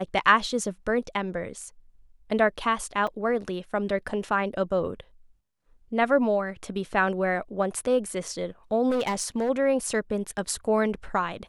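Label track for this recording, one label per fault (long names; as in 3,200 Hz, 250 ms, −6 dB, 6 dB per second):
3.070000	3.070000	drop-out 4 ms
8.890000	9.500000	clipping −21.5 dBFS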